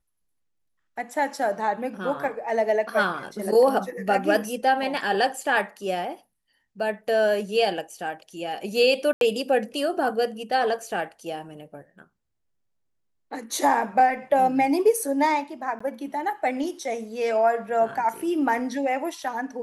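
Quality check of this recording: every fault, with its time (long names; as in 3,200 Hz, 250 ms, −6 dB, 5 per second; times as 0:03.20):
0:09.13–0:09.21: drop-out 82 ms
0:15.79–0:15.80: drop-out 15 ms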